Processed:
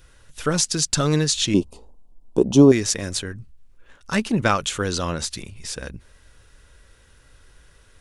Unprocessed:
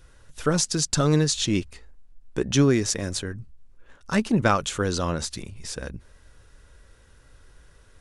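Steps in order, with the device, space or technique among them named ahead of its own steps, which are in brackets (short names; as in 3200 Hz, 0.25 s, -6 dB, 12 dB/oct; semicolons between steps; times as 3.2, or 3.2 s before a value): 1.54–2.72 EQ curve 120 Hz 0 dB, 210 Hz +8 dB, 970 Hz +9 dB, 1800 Hz -27 dB, 2900 Hz -8 dB, 4200 Hz -7 dB, 8900 Hz -3 dB; presence and air boost (bell 2800 Hz +4.5 dB 1.6 oct; high shelf 9200 Hz +7 dB)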